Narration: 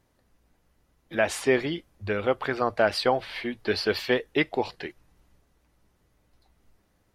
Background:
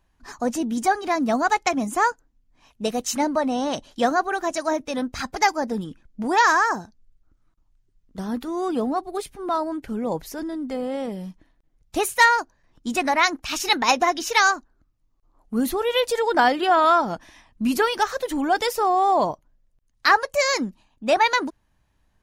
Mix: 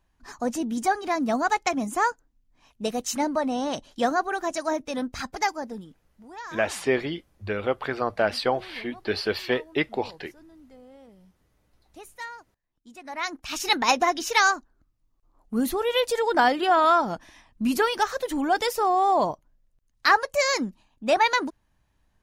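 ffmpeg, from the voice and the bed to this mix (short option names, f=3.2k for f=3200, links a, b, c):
-filter_complex "[0:a]adelay=5400,volume=-1dB[a];[1:a]volume=17dB,afade=t=out:st=5.14:d=0.98:silence=0.112202,afade=t=in:st=13.03:d=0.7:silence=0.1[b];[a][b]amix=inputs=2:normalize=0"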